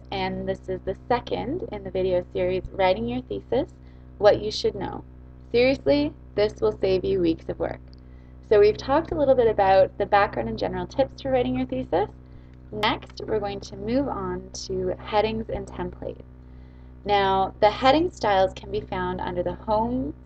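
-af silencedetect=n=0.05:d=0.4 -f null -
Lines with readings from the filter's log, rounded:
silence_start: 3.64
silence_end: 4.21 | silence_duration: 0.57
silence_start: 4.97
silence_end: 5.54 | silence_duration: 0.57
silence_start: 7.74
silence_end: 8.51 | silence_duration: 0.77
silence_start: 12.05
silence_end: 12.74 | silence_duration: 0.70
silence_start: 16.11
silence_end: 17.07 | silence_duration: 0.96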